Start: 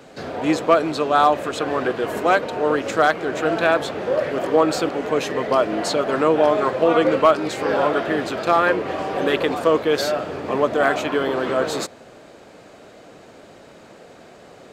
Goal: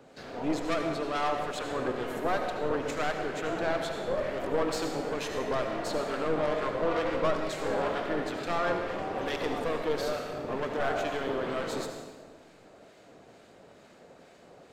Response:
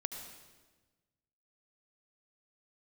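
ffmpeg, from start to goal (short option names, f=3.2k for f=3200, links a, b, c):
-filter_complex "[0:a]aeval=exprs='(tanh(7.08*val(0)+0.65)-tanh(0.65))/7.08':c=same,acrossover=split=1300[a][b];[a]aeval=exprs='val(0)*(1-0.5/2+0.5/2*cos(2*PI*2.2*n/s))':c=same[c];[b]aeval=exprs='val(0)*(1-0.5/2-0.5/2*cos(2*PI*2.2*n/s))':c=same[d];[c][d]amix=inputs=2:normalize=0[e];[1:a]atrim=start_sample=2205[f];[e][f]afir=irnorm=-1:irlink=0,volume=-4dB"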